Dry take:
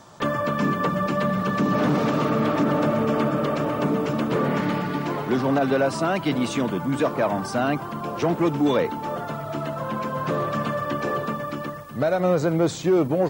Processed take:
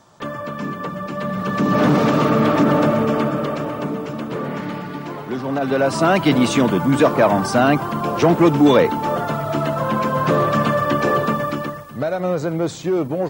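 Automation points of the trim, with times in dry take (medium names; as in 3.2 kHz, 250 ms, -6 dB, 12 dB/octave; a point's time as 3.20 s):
1.07 s -4 dB
1.82 s +6 dB
2.77 s +6 dB
4.06 s -3 dB
5.43 s -3 dB
6.09 s +8 dB
11.44 s +8 dB
12.08 s -0.5 dB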